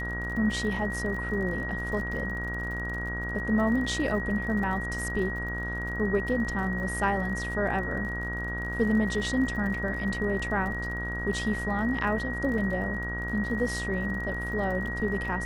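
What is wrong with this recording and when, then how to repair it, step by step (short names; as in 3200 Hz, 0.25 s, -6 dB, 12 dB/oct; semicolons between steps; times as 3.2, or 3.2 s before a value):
buzz 60 Hz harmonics 29 -35 dBFS
crackle 43/s -37 dBFS
tone 1900 Hz -33 dBFS
12.58 gap 2.4 ms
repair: de-click; de-hum 60 Hz, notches 29; notch 1900 Hz, Q 30; interpolate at 12.58, 2.4 ms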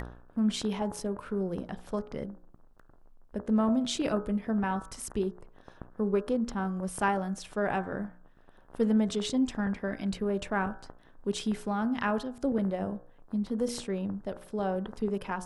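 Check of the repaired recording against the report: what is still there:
none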